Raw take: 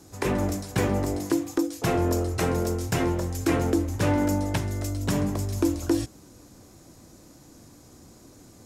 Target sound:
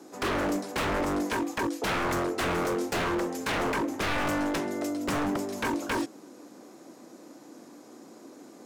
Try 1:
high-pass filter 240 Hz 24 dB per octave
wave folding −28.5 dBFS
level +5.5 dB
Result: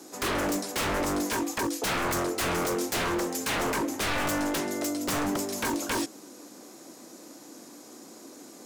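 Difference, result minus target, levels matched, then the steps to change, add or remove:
8,000 Hz band +7.5 dB
add after high-pass filter: high-shelf EQ 3,200 Hz −11.5 dB

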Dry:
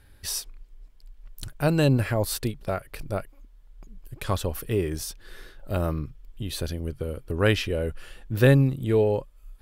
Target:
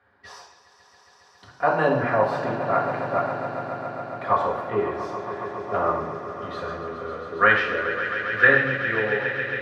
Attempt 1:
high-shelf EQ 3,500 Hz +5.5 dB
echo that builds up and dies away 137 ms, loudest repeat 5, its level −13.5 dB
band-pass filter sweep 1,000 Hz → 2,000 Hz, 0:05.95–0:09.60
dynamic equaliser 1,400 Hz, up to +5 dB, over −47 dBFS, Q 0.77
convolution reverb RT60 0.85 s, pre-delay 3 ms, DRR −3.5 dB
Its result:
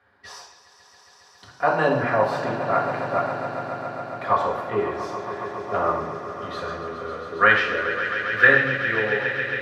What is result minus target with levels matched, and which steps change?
8,000 Hz band +5.0 dB
change: high-shelf EQ 3,500 Hz −2 dB

